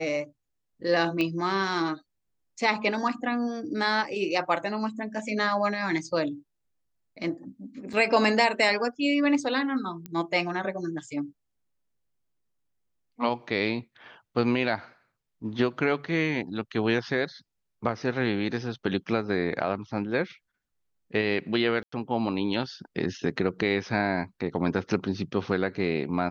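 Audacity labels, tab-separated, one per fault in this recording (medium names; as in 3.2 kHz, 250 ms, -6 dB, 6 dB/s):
1.210000	1.210000	pop -15 dBFS
7.930000	7.930000	dropout 4.5 ms
10.060000	10.060000	pop -22 dBFS
21.830000	21.920000	dropout 94 ms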